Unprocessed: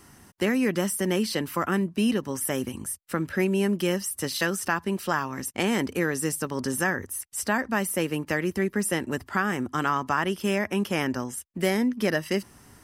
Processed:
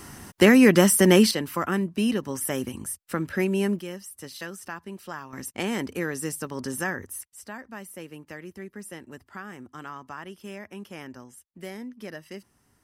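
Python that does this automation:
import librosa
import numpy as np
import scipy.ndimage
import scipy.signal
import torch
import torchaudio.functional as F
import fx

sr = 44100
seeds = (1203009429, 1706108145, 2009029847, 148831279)

y = fx.gain(x, sr, db=fx.steps((0.0, 9.0), (1.31, -0.5), (3.79, -11.0), (5.33, -3.5), (7.27, -14.0)))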